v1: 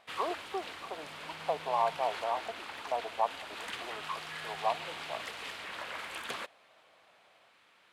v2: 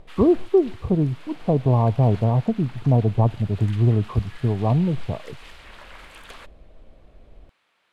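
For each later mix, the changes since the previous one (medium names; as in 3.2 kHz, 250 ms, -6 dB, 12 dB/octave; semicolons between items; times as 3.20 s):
speech: remove high-pass 750 Hz 24 dB/octave; background -4.0 dB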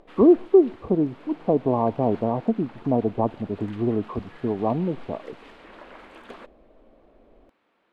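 background: add tilt EQ -4.5 dB/octave; master: add resonant low shelf 180 Hz -12 dB, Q 1.5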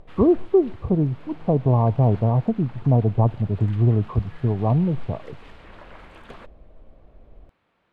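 master: add resonant low shelf 180 Hz +12 dB, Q 1.5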